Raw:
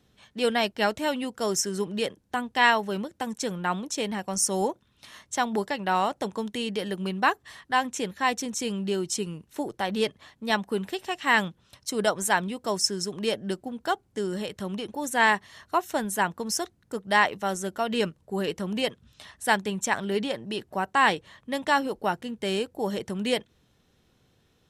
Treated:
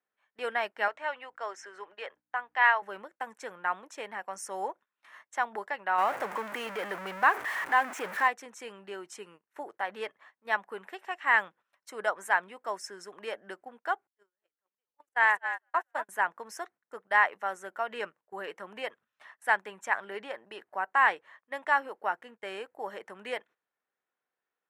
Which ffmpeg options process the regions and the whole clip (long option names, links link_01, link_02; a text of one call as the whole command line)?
ffmpeg -i in.wav -filter_complex "[0:a]asettb=1/sr,asplit=3[link_01][link_02][link_03];[link_01]atrim=end=0.884[link_04];[link_02]atrim=start=0.88:end=2.82,asetpts=PTS-STARTPTS,afade=type=in:duration=0.004:curve=qsin,afade=type=out:start_time=1.936:duration=0.004:curve=qsin,highpass=530,lowpass=4900,aeval=exprs='val(0)+0.00224*(sin(2*PI*60*n/s)+sin(2*PI*2*60*n/s)/2+sin(2*PI*3*60*n/s)/3+sin(2*PI*4*60*n/s)/4+sin(2*PI*5*60*n/s)/5)':channel_layout=same[link_05];[link_03]atrim=start=2.816[link_06];[link_04][link_05]acrossfade=duration=0.004:curve1=hsin:curve2=qsin[link_07];[link_07][link_06]acrossfade=duration=0.004:curve1=qsin:curve2=hsin,asettb=1/sr,asplit=3[link_08][link_09][link_10];[link_08]atrim=end=5.984[link_11];[link_09]atrim=start=5.98:end=8.28,asetpts=PTS-STARTPTS,afade=type=in:duration=0.004:curve=qsin,afade=type=out:start_time=2.296:duration=0.004:curve=qsin,aeval=exprs='val(0)+0.5*0.0631*sgn(val(0))':channel_layout=same,lowshelf=frequency=200:gain=5[link_12];[link_10]atrim=start=8.276[link_13];[link_11][link_12]acrossfade=duration=0.004:curve1=hsin:curve2=qsin[link_14];[link_14][link_13]acrossfade=duration=0.004:curve1=qsin:curve2=hsin,asettb=1/sr,asplit=3[link_15][link_16][link_17];[link_15]atrim=end=14.074[link_18];[link_16]atrim=start=14.07:end=16.09,asetpts=PTS-STARTPTS,afade=type=in:duration=0.004:curve=qsin,afade=type=out:start_time=2.016:duration=0.004:curve=qsin,lowshelf=frequency=400:gain=-7.5,asplit=6[link_19][link_20][link_21][link_22][link_23][link_24];[link_20]adelay=231,afreqshift=-60,volume=-8.5dB[link_25];[link_21]adelay=462,afreqshift=-120,volume=-14.9dB[link_26];[link_22]adelay=693,afreqshift=-180,volume=-21.3dB[link_27];[link_23]adelay=924,afreqshift=-240,volume=-27.6dB[link_28];[link_24]adelay=1155,afreqshift=-300,volume=-34dB[link_29];[link_19][link_25][link_26][link_27][link_28][link_29]amix=inputs=6:normalize=0,atrim=end_sample=89082,agate=range=-36dB:threshold=-30dB:ratio=16:release=100:detection=peak[link_30];[link_17]atrim=start=16.086[link_31];[link_18][link_30]acrossfade=duration=0.004:curve1=hsin:curve2=qsin[link_32];[link_32][link_31]acrossfade=duration=0.004:curve1=qsin:curve2=hsin,highpass=690,agate=range=-14dB:threshold=-49dB:ratio=16:detection=peak,highshelf=frequency=2700:width_type=q:width=1.5:gain=-13,volume=-3dB" out.wav